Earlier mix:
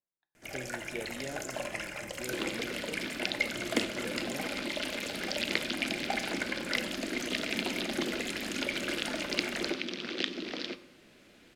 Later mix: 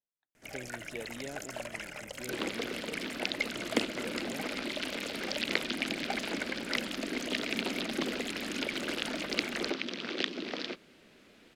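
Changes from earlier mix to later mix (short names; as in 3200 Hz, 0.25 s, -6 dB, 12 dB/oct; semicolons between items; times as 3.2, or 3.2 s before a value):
second sound: add bell 830 Hz +4.5 dB 2.2 oct; reverb: off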